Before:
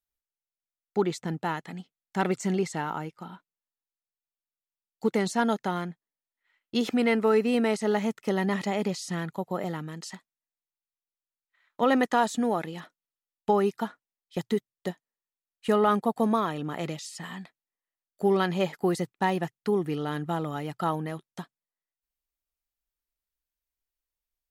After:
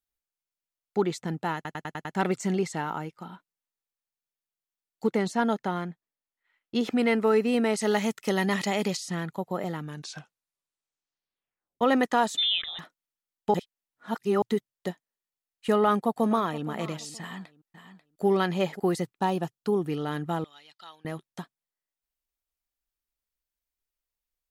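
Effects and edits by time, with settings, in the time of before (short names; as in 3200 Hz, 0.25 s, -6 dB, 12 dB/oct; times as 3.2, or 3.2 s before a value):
1.55 stutter in place 0.10 s, 6 plays
5.07–6.97 high shelf 3700 Hz -6 dB
7.77–8.97 high shelf 2000 Hz +8.5 dB
9.79 tape stop 2.02 s
12.37–12.79 inverted band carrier 3800 Hz
13.54–14.42 reverse
15.76–16.67 echo throw 0.47 s, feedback 25%, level -16.5 dB
17.2–18.25 echo throw 0.54 s, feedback 10%, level -11.5 dB
19.17–19.88 bell 2000 Hz -12.5 dB 0.39 oct
20.44–21.05 band-pass 3900 Hz, Q 2.6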